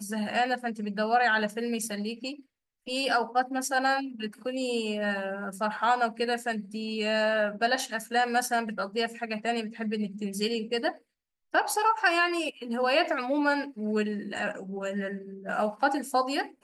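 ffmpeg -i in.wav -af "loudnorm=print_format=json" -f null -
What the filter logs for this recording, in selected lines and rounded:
"input_i" : "-28.8",
"input_tp" : "-11.7",
"input_lra" : "2.8",
"input_thresh" : "-38.9",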